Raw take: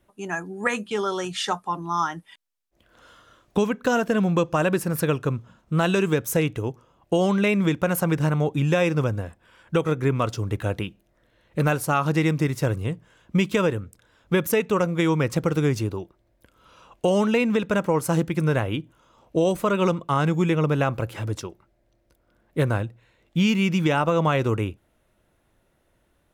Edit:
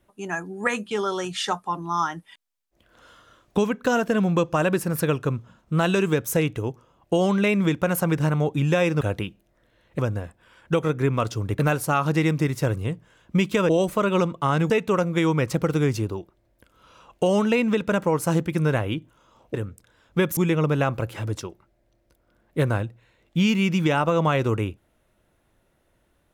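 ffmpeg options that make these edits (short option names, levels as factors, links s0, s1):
-filter_complex "[0:a]asplit=8[s0][s1][s2][s3][s4][s5][s6][s7];[s0]atrim=end=9.012[s8];[s1]atrim=start=10.608:end=11.592[s9];[s2]atrim=start=9.008:end=10.612[s10];[s3]atrim=start=11.588:end=13.692[s11];[s4]atrim=start=19.358:end=20.372[s12];[s5]atrim=start=14.518:end=19.362[s13];[s6]atrim=start=13.688:end=14.522[s14];[s7]atrim=start=20.368[s15];[s8][s9]acrossfade=d=0.004:c1=hsin:c2=hsin[s16];[s16][s10]acrossfade=d=0.004:c1=hsin:c2=hsin[s17];[s17][s11]acrossfade=d=0.004:c1=hsin:c2=hsin[s18];[s18][s12]acrossfade=d=0.004:c1=hsin:c2=hsin[s19];[s19][s13]acrossfade=d=0.004:c1=hsin:c2=hsin[s20];[s20][s14]acrossfade=d=0.004:c1=hsin:c2=hsin[s21];[s21][s15]acrossfade=d=0.004:c1=hsin:c2=hsin"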